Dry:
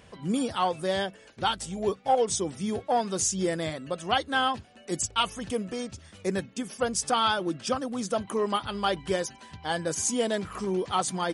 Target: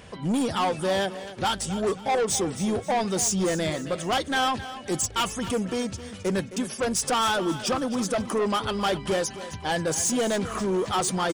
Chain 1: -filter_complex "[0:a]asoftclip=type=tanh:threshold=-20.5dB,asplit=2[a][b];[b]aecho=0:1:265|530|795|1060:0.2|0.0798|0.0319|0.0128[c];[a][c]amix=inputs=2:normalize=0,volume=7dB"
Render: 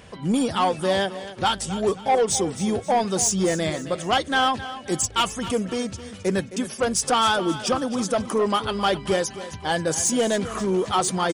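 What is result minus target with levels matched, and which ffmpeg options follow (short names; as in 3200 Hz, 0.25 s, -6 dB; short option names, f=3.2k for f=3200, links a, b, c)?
soft clip: distortion -7 dB
-filter_complex "[0:a]asoftclip=type=tanh:threshold=-27.5dB,asplit=2[a][b];[b]aecho=0:1:265|530|795|1060:0.2|0.0798|0.0319|0.0128[c];[a][c]amix=inputs=2:normalize=0,volume=7dB"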